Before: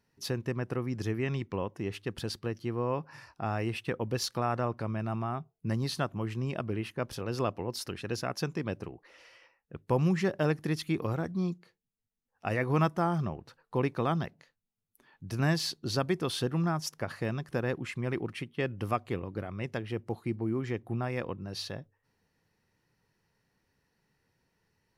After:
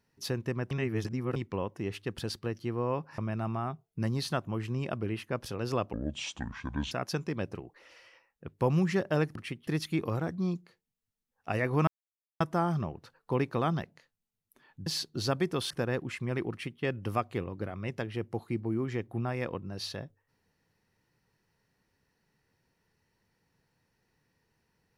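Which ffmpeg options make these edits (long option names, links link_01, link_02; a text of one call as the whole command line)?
ffmpeg -i in.wav -filter_complex "[0:a]asplit=11[link_01][link_02][link_03][link_04][link_05][link_06][link_07][link_08][link_09][link_10][link_11];[link_01]atrim=end=0.712[link_12];[link_02]atrim=start=0.708:end=1.362,asetpts=PTS-STARTPTS,areverse[link_13];[link_03]atrim=start=1.358:end=3.182[link_14];[link_04]atrim=start=4.848:end=7.604[link_15];[link_05]atrim=start=7.6:end=8.2,asetpts=PTS-STARTPTS,asetrate=26901,aresample=44100,atrim=end_sample=43377,asetpts=PTS-STARTPTS[link_16];[link_06]atrim=start=8.196:end=10.642[link_17];[link_07]atrim=start=18.258:end=18.582[link_18];[link_08]atrim=start=10.638:end=12.84,asetpts=PTS-STARTPTS,afade=type=out:start_time=2.198:duration=0.004:curve=hsin,apad=pad_dur=0.53[link_19];[link_09]atrim=start=12.84:end=15.302,asetpts=PTS-STARTPTS,afade=type=in:duration=0.004:curve=hsin[link_20];[link_10]atrim=start=15.548:end=16.392[link_21];[link_11]atrim=start=17.458[link_22];[link_12][link_13]acrossfade=duration=0.004:curve1=hsin:curve2=hsin[link_23];[link_23][link_14]acrossfade=duration=0.004:curve1=hsin:curve2=hsin[link_24];[link_24][link_15]acrossfade=duration=0.004:curve1=hsin:curve2=hsin[link_25];[link_25][link_16]acrossfade=duration=0.004:curve1=hsin:curve2=hsin[link_26];[link_26][link_17]acrossfade=duration=0.004:curve1=hsin:curve2=hsin[link_27];[link_27][link_18]acrossfade=duration=0.004:curve1=hsin:curve2=hsin[link_28];[link_19][link_20]concat=n=2:v=0:a=1[link_29];[link_28][link_29]acrossfade=duration=0.004:curve1=hsin:curve2=hsin[link_30];[link_30][link_21]acrossfade=duration=0.004:curve1=hsin:curve2=hsin[link_31];[link_31][link_22]acrossfade=duration=0.004:curve1=hsin:curve2=hsin" out.wav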